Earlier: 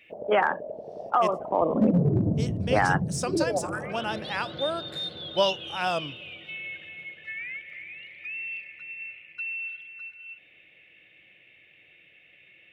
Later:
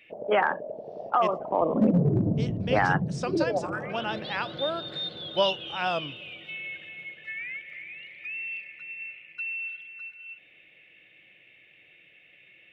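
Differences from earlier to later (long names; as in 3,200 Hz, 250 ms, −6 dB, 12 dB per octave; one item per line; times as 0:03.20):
speech: add Chebyshev low-pass filter 3,600 Hz, order 2
master: add parametric band 80 Hz −15 dB 0.22 octaves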